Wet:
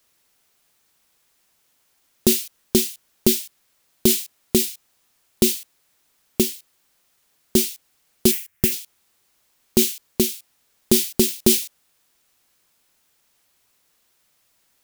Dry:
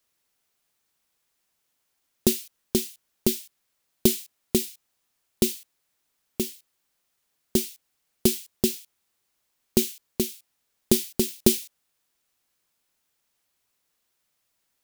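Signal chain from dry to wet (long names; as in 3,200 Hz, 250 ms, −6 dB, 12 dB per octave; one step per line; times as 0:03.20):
0:08.31–0:08.72: octave-band graphic EQ 125/250/500/1,000/2,000/4,000/8,000 Hz +4/−9/−10/−7/+9/−12/−4 dB
boost into a limiter +11 dB
level −1 dB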